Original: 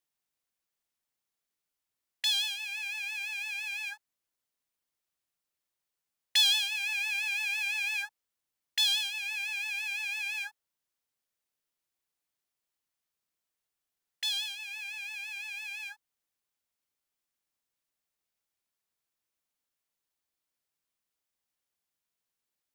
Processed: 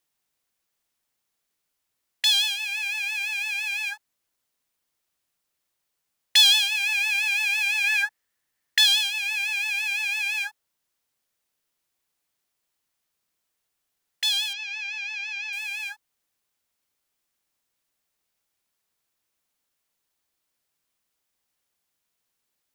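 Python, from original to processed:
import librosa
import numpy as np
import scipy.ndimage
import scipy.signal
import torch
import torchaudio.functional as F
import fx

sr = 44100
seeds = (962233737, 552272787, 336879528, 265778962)

y = fx.peak_eq(x, sr, hz=1800.0, db=11.0, octaves=0.33, at=(7.84, 8.86))
y = fx.ellip_bandpass(y, sr, low_hz=440.0, high_hz=5900.0, order=3, stop_db=40, at=(14.53, 15.53))
y = y * librosa.db_to_amplitude(8.0)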